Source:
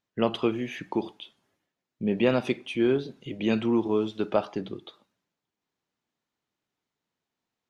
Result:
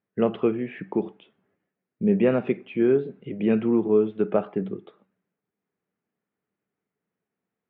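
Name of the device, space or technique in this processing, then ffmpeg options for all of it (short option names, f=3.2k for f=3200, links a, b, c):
bass cabinet: -af "highpass=64,equalizer=f=190:t=q:w=4:g=9,equalizer=f=430:t=q:w=4:g=7,equalizer=f=950:t=q:w=4:g=-5,lowpass=f=2.3k:w=0.5412,lowpass=f=2.3k:w=1.3066"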